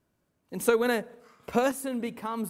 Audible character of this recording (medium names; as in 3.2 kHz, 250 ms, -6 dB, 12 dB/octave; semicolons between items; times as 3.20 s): random-step tremolo 3.5 Hz, depth 55%